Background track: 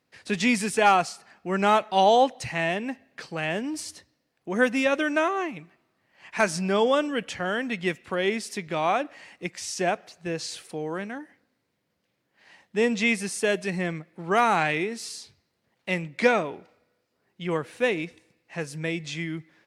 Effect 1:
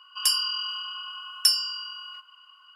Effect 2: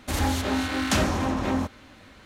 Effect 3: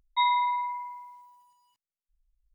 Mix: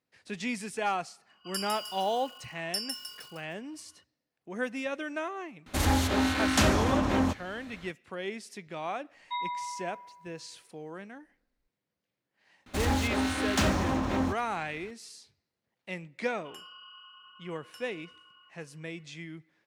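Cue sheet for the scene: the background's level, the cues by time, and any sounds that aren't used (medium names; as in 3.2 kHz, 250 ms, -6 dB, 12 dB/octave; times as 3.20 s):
background track -11 dB
1.29 s: add 1 -13.5 dB + bit-crushed delay 154 ms, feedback 55%, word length 6-bit, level -3.5 dB
5.66 s: add 2 -0.5 dB
9.14 s: add 3 -10 dB
12.66 s: add 2 -3 dB + median filter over 3 samples
16.29 s: add 1 -13.5 dB + boxcar filter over 9 samples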